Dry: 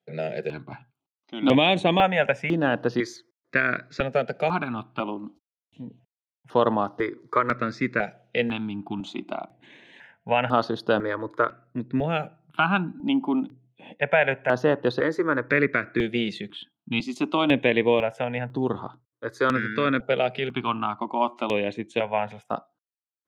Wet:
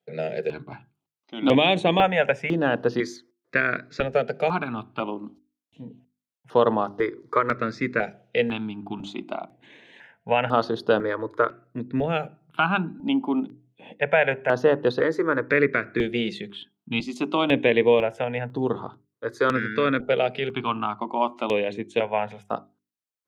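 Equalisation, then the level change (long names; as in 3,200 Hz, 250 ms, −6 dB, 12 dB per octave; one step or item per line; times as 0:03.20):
parametric band 450 Hz +4.5 dB 0.34 octaves
mains-hum notches 50/100/150/200/250/300/350/400 Hz
0.0 dB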